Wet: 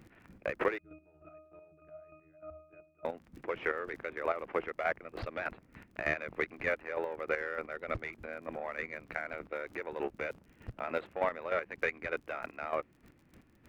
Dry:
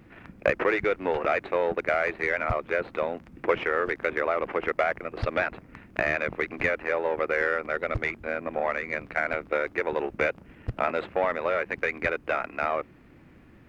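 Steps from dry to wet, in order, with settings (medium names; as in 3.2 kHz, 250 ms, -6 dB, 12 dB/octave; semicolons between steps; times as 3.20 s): crackle 33 per s -40 dBFS; 0.78–3.05 s: pitch-class resonator D#, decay 0.57 s; square tremolo 3.3 Hz, depth 60%, duty 25%; trim -4.5 dB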